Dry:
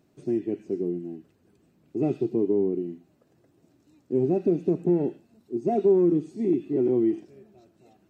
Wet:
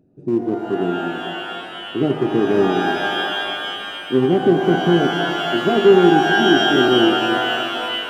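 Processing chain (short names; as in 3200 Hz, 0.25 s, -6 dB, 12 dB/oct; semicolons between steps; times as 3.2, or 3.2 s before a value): Wiener smoothing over 41 samples; shimmer reverb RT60 2.9 s, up +12 st, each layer -2 dB, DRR 5.5 dB; gain +7.5 dB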